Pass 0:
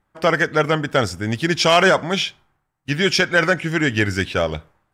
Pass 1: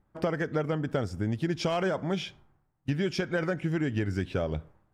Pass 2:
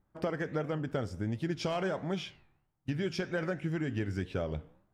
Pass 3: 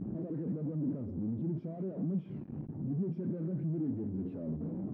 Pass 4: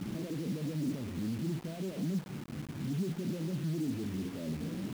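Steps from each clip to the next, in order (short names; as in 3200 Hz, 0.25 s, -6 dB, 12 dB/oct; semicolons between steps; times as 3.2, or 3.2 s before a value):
tilt shelf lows +7 dB, about 820 Hz; compressor 5:1, threshold -22 dBFS, peak gain reduction 12.5 dB; gain -4 dB
flange 1.4 Hz, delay 9.6 ms, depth 7 ms, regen -84%
infinite clipping; band-pass 230 Hz, Q 1.6; spectral expander 1.5:1; gain +7.5 dB
bit-crush 8-bit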